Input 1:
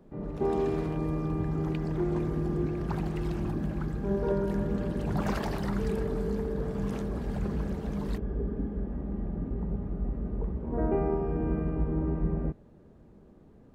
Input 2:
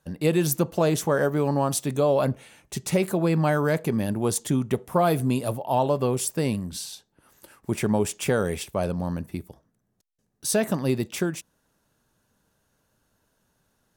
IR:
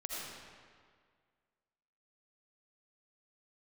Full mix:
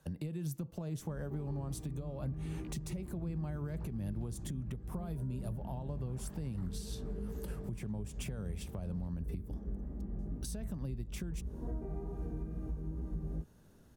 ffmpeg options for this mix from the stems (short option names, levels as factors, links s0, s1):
-filter_complex "[0:a]flanger=delay=16:depth=4.1:speed=2.3,adelay=900,volume=0.299[s0];[1:a]acompressor=threshold=0.0178:ratio=3,volume=1[s1];[s0][s1]amix=inputs=2:normalize=0,lowshelf=f=300:g=7,acrossover=split=170[s2][s3];[s3]acompressor=threshold=0.00794:ratio=6[s4];[s2][s4]amix=inputs=2:normalize=0,alimiter=level_in=2:limit=0.0631:level=0:latency=1:release=286,volume=0.501"